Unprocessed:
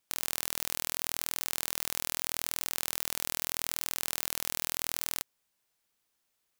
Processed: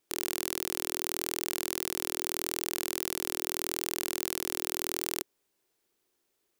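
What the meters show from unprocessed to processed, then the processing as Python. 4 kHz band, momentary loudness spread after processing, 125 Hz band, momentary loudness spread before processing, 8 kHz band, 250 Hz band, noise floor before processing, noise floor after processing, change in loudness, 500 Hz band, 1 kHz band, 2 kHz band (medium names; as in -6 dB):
0.0 dB, 0 LU, +1.0 dB, 0 LU, 0.0 dB, +9.0 dB, -79 dBFS, -78 dBFS, +0.5 dB, +9.0 dB, +1.5 dB, +0.5 dB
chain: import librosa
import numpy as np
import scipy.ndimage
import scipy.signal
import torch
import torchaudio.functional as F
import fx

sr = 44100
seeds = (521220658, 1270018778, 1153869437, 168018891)

y = fx.peak_eq(x, sr, hz=370.0, db=15.0, octaves=0.82)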